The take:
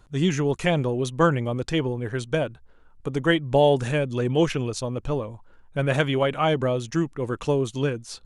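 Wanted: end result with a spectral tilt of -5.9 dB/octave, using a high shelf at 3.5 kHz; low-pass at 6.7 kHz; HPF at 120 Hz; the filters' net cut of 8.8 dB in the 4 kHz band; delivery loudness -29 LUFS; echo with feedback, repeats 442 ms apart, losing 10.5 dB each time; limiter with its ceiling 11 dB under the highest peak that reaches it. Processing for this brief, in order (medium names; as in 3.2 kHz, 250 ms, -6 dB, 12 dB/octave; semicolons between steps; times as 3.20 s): high-pass 120 Hz; low-pass 6.7 kHz; treble shelf 3.5 kHz -9 dB; peaking EQ 4 kHz -6.5 dB; peak limiter -18 dBFS; feedback delay 442 ms, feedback 30%, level -10.5 dB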